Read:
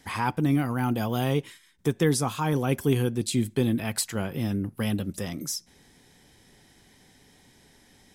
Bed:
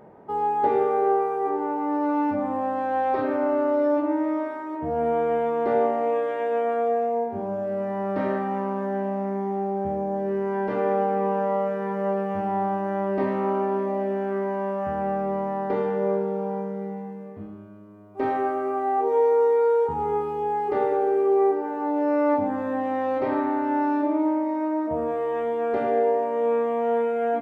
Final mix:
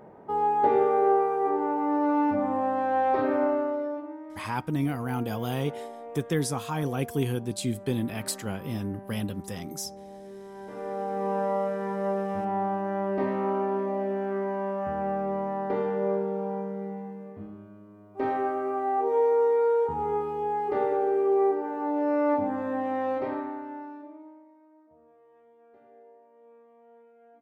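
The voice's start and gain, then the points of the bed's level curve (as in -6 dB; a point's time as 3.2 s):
4.30 s, -4.0 dB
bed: 3.43 s -0.5 dB
4.21 s -17.5 dB
10.52 s -17.5 dB
11.36 s -3 dB
23.11 s -3 dB
24.65 s -32.5 dB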